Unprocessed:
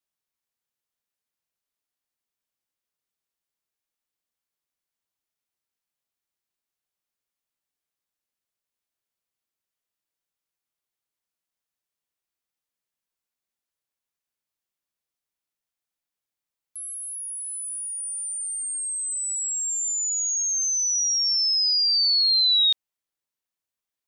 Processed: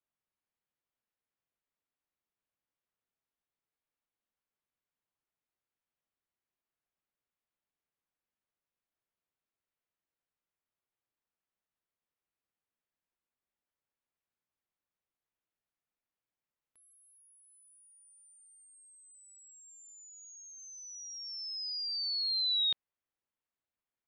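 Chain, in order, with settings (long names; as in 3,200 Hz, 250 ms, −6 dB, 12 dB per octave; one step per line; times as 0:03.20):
high-frequency loss of the air 380 metres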